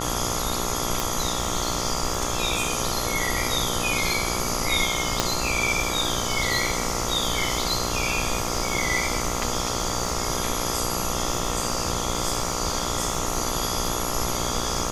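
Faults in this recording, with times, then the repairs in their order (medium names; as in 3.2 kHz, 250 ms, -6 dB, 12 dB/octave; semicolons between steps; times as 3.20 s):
buzz 60 Hz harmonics 23 -30 dBFS
crackle 34 per s -31 dBFS
1.00 s: pop
5.20 s: pop -5 dBFS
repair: de-click; de-hum 60 Hz, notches 23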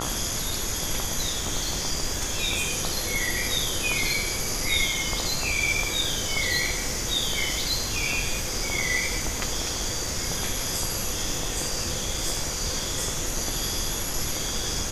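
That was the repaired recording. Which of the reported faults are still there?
1.00 s: pop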